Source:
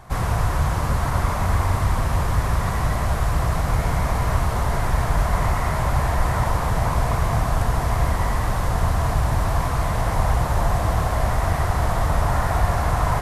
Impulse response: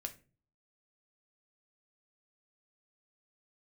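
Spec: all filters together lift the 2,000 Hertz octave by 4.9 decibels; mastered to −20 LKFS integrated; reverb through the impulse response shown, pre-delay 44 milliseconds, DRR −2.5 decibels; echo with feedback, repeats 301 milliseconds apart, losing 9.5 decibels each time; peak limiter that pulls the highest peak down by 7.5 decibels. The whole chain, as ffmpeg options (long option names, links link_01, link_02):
-filter_complex "[0:a]equalizer=frequency=2000:width_type=o:gain=6,alimiter=limit=-14dB:level=0:latency=1,aecho=1:1:301|602|903|1204:0.335|0.111|0.0365|0.012,asplit=2[link_01][link_02];[1:a]atrim=start_sample=2205,adelay=44[link_03];[link_02][link_03]afir=irnorm=-1:irlink=0,volume=5dB[link_04];[link_01][link_04]amix=inputs=2:normalize=0,volume=-1dB"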